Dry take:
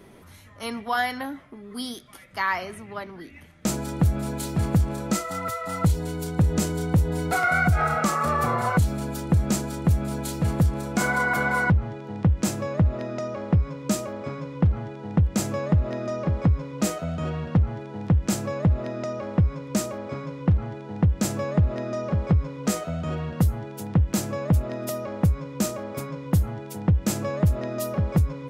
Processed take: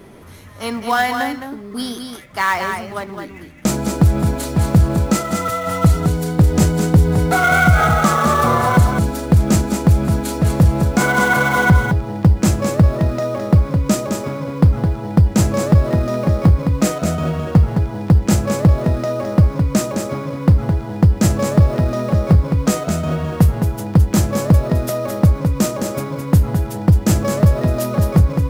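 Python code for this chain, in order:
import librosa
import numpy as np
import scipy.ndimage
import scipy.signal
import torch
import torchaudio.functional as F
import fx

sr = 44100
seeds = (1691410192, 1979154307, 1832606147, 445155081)

p1 = fx.sample_hold(x, sr, seeds[0], rate_hz=4800.0, jitter_pct=20)
p2 = x + (p1 * librosa.db_to_amplitude(-10.5))
p3 = p2 + 10.0 ** (-6.0 / 20.0) * np.pad(p2, (int(213 * sr / 1000.0), 0))[:len(p2)]
y = p3 * librosa.db_to_amplitude(6.0)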